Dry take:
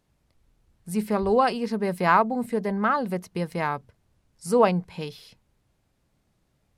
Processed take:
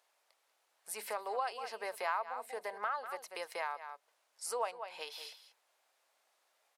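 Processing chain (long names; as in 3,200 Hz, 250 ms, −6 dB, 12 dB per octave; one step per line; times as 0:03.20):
high-pass filter 610 Hz 24 dB per octave
single-tap delay 191 ms −13.5 dB
downward compressor 2.5 to 1, threshold −43 dBFS, peak gain reduction 19 dB
level +2 dB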